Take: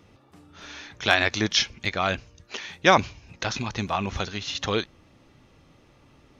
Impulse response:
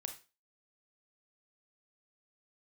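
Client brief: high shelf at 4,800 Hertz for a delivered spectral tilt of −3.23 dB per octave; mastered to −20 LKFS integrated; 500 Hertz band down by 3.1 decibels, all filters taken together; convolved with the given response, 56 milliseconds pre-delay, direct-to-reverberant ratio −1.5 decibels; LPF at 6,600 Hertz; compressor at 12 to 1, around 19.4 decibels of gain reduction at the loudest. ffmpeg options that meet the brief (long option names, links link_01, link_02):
-filter_complex "[0:a]lowpass=6600,equalizer=frequency=500:width_type=o:gain=-4,highshelf=frequency=4800:gain=3.5,acompressor=threshold=-32dB:ratio=12,asplit=2[link_01][link_02];[1:a]atrim=start_sample=2205,adelay=56[link_03];[link_02][link_03]afir=irnorm=-1:irlink=0,volume=4dB[link_04];[link_01][link_04]amix=inputs=2:normalize=0,volume=13.5dB"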